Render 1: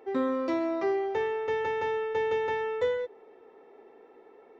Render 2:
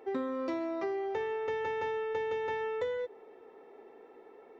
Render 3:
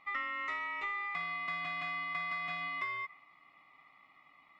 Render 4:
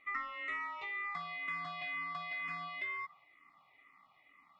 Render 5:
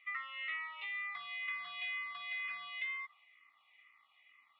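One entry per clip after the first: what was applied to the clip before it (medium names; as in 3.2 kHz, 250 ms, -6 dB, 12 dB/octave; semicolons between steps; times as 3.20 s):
compression, threshold -31 dBFS, peak gain reduction 8 dB
ring modulator 1.6 kHz; dynamic bell 1.7 kHz, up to +7 dB, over -50 dBFS, Q 1.2; trim -5.5 dB
barber-pole phaser -2.1 Hz
band-pass filter 3.1 kHz, Q 3; distance through air 250 m; trim +11.5 dB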